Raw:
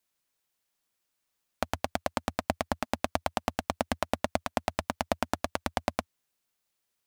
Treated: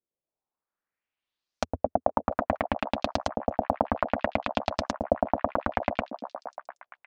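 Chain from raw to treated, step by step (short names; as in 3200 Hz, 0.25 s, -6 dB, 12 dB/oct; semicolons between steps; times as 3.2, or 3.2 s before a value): sample leveller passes 2; LFO low-pass saw up 0.61 Hz 410–6000 Hz; on a send: delay with a stepping band-pass 0.233 s, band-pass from 320 Hz, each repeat 0.7 oct, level -5 dB; on the sum: gain -3.5 dB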